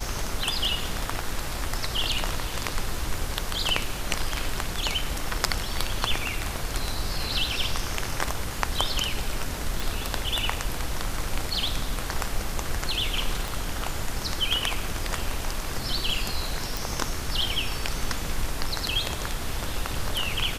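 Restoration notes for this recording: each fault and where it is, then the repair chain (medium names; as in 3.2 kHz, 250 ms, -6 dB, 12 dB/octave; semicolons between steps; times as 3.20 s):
9.80 s: pop
13.48 s: pop
16.77 s: pop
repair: de-click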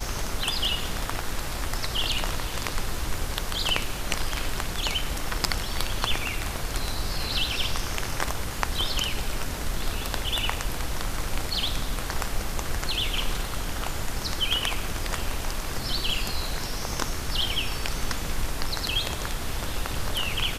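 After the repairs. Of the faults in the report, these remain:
13.48 s: pop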